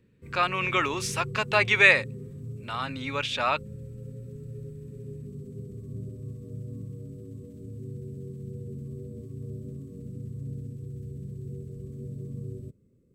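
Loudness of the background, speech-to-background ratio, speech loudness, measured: -40.0 LUFS, 16.0 dB, -24.0 LUFS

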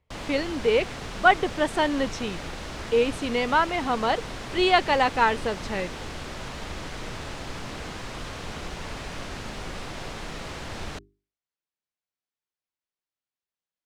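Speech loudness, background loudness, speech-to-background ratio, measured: -24.5 LUFS, -36.5 LUFS, 12.0 dB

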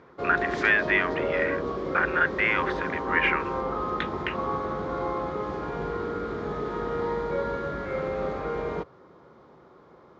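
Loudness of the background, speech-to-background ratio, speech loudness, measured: -30.5 LUFS, 4.0 dB, -26.5 LUFS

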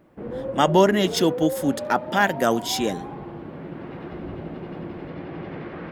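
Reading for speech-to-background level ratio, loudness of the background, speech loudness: 11.0 dB, -33.0 LUFS, -22.0 LUFS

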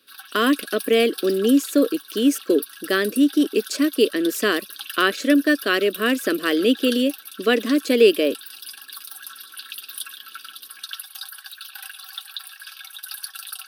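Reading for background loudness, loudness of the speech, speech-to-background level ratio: -35.5 LUFS, -20.5 LUFS, 15.0 dB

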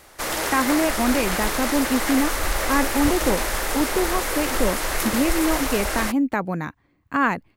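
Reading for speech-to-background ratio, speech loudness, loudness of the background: 0.5 dB, -24.0 LUFS, -24.5 LUFS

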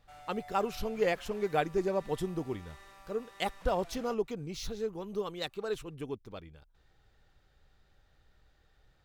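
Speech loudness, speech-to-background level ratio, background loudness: -35.0 LUFS, 18.5 dB, -53.5 LUFS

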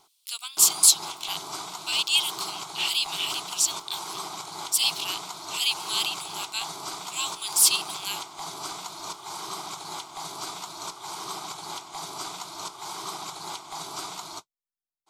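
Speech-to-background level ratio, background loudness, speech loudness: 11.5 dB, -35.5 LUFS, -24.0 LUFS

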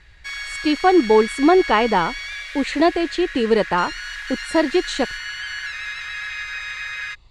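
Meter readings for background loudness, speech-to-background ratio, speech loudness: -29.0 LUFS, 10.0 dB, -19.0 LUFS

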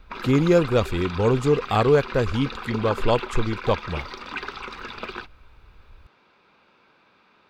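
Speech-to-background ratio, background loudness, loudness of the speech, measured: 11.5 dB, -34.0 LUFS, -22.5 LUFS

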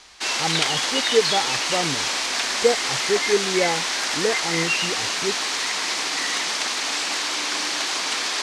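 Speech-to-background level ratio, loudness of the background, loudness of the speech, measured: -4.5 dB, -22.0 LUFS, -26.5 LUFS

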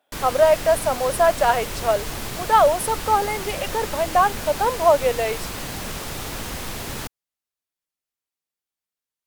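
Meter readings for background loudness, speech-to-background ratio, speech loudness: -30.0 LUFS, 9.5 dB, -20.5 LUFS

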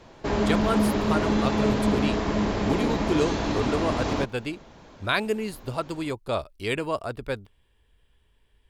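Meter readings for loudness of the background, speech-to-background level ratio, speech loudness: -25.5 LUFS, -4.5 dB, -30.0 LUFS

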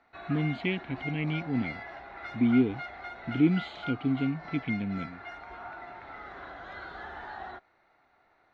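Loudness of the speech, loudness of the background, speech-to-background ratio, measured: -30.0 LUFS, -41.5 LUFS, 11.5 dB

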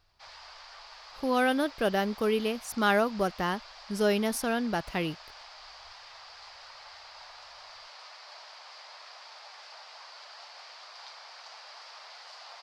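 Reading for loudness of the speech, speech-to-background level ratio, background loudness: -29.0 LUFS, 18.0 dB, -47.0 LUFS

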